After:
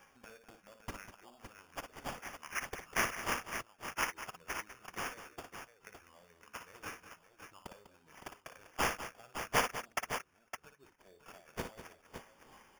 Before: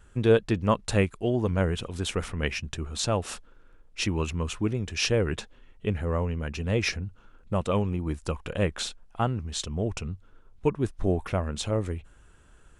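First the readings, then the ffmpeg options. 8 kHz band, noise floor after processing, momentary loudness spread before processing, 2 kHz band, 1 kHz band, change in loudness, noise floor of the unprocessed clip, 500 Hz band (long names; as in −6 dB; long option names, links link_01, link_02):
−7.5 dB, −69 dBFS, 10 LU, −4.0 dB, −5.0 dB, −11.0 dB, −56 dBFS, −18.5 dB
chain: -filter_complex "[0:a]afftfilt=real='re*pow(10,17/40*sin(2*PI*(0.55*log(max(b,1)*sr/1024/100)/log(2)-(-2.7)*(pts-256)/sr)))':imag='im*pow(10,17/40*sin(2*PI*(0.55*log(max(b,1)*sr/1024/100)/log(2)-(-2.7)*(pts-256)/sr)))':win_size=1024:overlap=0.75,acompressor=threshold=-35dB:ratio=5,bandpass=frequency=6700:width_type=q:width=3.6:csg=0,acrusher=samples=11:mix=1:aa=0.000001,asplit=2[link_01][link_02];[link_02]aecho=0:1:54|58|198|562:0.126|0.376|0.251|0.376[link_03];[link_01][link_03]amix=inputs=2:normalize=0,volume=11dB"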